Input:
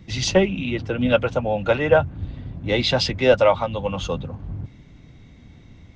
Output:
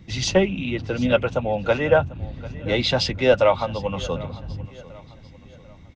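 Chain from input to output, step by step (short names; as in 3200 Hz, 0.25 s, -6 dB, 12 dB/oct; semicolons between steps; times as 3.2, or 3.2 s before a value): feedback echo 0.744 s, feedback 41%, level -19.5 dB; gain -1 dB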